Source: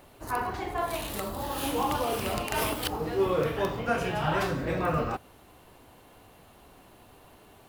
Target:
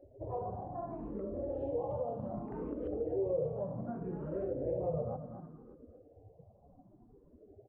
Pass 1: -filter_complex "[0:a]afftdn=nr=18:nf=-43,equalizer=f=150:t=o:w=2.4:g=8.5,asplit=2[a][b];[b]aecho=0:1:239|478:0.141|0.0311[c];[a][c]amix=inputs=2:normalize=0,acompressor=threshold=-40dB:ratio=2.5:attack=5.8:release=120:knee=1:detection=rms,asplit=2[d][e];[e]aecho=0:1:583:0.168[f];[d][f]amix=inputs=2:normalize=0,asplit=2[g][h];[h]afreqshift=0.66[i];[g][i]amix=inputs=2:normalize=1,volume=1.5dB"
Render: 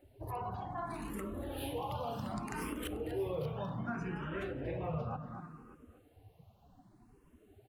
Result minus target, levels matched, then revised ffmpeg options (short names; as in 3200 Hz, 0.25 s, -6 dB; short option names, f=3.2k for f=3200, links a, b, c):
500 Hz band -3.5 dB
-filter_complex "[0:a]afftdn=nr=18:nf=-43,lowpass=f=550:t=q:w=3.7,equalizer=f=150:t=o:w=2.4:g=8.5,asplit=2[a][b];[b]aecho=0:1:239|478:0.141|0.0311[c];[a][c]amix=inputs=2:normalize=0,acompressor=threshold=-40dB:ratio=2.5:attack=5.8:release=120:knee=1:detection=rms,asplit=2[d][e];[e]aecho=0:1:583:0.168[f];[d][f]amix=inputs=2:normalize=0,asplit=2[g][h];[h]afreqshift=0.66[i];[g][i]amix=inputs=2:normalize=1,volume=1.5dB"